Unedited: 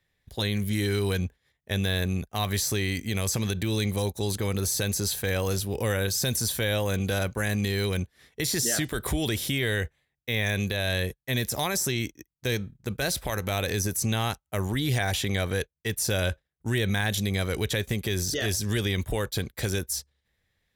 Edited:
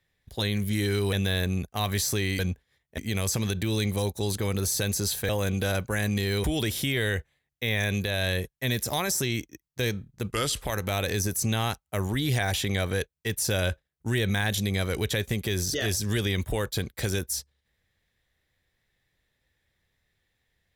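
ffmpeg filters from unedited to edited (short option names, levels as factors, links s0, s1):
-filter_complex "[0:a]asplit=8[s0][s1][s2][s3][s4][s5][s6][s7];[s0]atrim=end=1.132[s8];[s1]atrim=start=1.718:end=2.982[s9];[s2]atrim=start=1.128:end=1.722[s10];[s3]atrim=start=2.978:end=5.292[s11];[s4]atrim=start=6.758:end=7.912[s12];[s5]atrim=start=9.098:end=12.964[s13];[s6]atrim=start=12.96:end=13.22,asetpts=PTS-STARTPTS,asetrate=35721,aresample=44100[s14];[s7]atrim=start=13.216[s15];[s8][s9]acrossfade=d=0.004:c1=hsin:c2=hsin[s16];[s16][s10]acrossfade=d=0.004:c1=hsin:c2=hsin[s17];[s17][s11]acrossfade=d=0.004:c1=hsin:c2=hsin[s18];[s18][s12]acrossfade=d=0.004:c1=hsin:c2=hsin[s19];[s19][s13]acrossfade=d=0.004:c1=hsin:c2=hsin[s20];[s20][s14]acrossfade=d=0.004:c1=hsin:c2=hsin[s21];[s21][s15]acrossfade=d=0.004:c1=hsin:c2=hsin"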